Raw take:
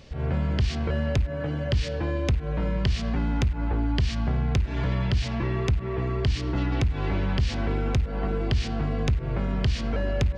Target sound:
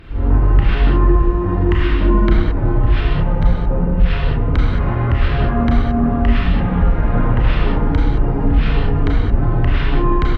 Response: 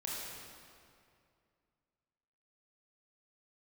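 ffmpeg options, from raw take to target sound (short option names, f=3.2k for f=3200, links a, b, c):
-filter_complex "[0:a]highshelf=f=4.7k:g=-6,asplit=2[a][b];[b]alimiter=limit=-22dB:level=0:latency=1:release=10,volume=2.5dB[c];[a][c]amix=inputs=2:normalize=0,acontrast=23,asetrate=26990,aresample=44100,atempo=1.63392[d];[1:a]atrim=start_sample=2205,afade=t=out:st=0.23:d=0.01,atrim=end_sample=10584,asetrate=35280,aresample=44100[e];[d][e]afir=irnorm=-1:irlink=0"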